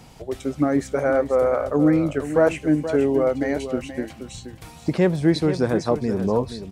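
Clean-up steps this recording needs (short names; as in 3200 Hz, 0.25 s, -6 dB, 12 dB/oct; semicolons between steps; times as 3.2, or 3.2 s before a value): inverse comb 0.477 s -11 dB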